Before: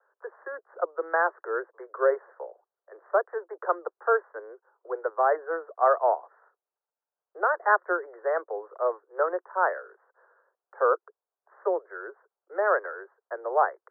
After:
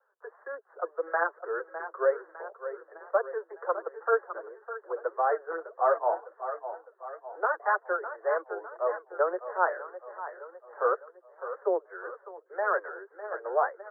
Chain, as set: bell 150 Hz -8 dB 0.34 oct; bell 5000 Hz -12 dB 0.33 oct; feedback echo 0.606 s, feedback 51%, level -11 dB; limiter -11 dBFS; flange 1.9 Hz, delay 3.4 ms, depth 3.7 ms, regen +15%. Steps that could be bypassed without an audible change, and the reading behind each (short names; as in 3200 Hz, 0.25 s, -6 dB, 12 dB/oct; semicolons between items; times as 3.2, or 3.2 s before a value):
bell 150 Hz: input band starts at 300 Hz; bell 5000 Hz: input band ends at 1900 Hz